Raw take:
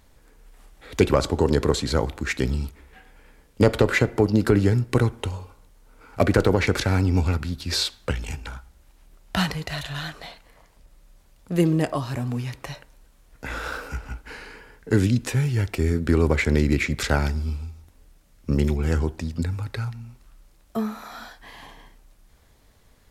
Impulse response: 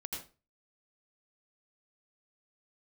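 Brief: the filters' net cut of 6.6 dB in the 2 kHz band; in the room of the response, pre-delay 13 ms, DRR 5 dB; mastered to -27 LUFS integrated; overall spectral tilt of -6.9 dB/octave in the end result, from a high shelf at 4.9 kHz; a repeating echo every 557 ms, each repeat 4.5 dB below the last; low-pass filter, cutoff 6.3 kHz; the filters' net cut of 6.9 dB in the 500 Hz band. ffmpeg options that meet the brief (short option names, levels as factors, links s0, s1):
-filter_complex "[0:a]lowpass=6300,equalizer=f=500:t=o:g=-8.5,equalizer=f=2000:t=o:g=-6.5,highshelf=f=4900:g=-8,aecho=1:1:557|1114|1671|2228|2785|3342|3899|4456|5013:0.596|0.357|0.214|0.129|0.0772|0.0463|0.0278|0.0167|0.01,asplit=2[s0][s1];[1:a]atrim=start_sample=2205,adelay=13[s2];[s1][s2]afir=irnorm=-1:irlink=0,volume=0.596[s3];[s0][s3]amix=inputs=2:normalize=0,volume=0.668"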